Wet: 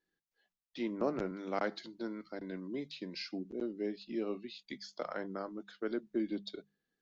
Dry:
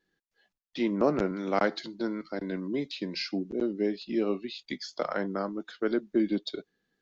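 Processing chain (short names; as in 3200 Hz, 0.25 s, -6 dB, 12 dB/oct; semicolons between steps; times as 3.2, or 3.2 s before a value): notches 50/100/150/200 Hz; gain -8.5 dB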